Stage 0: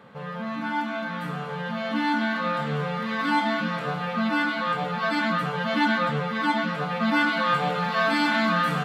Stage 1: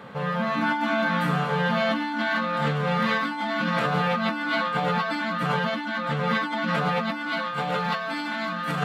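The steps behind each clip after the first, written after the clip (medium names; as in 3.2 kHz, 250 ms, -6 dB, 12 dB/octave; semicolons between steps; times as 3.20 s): de-hum 55.58 Hz, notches 10; compressor with a negative ratio -30 dBFS, ratio -1; trim +4 dB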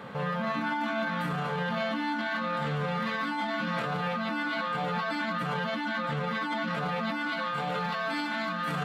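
peak limiter -23 dBFS, peak gain reduction 11 dB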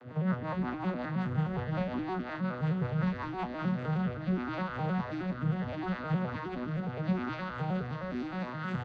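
vocoder on a broken chord major triad, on B2, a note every 104 ms; rotary cabinet horn 5.5 Hz, later 0.75 Hz, at 3.33 s; frequency-shifting echo 210 ms, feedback 33%, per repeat -58 Hz, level -16 dB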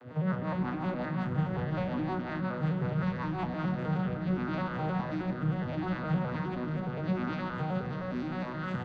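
on a send at -5.5 dB: distance through air 470 m + reverberation RT60 2.7 s, pre-delay 7 ms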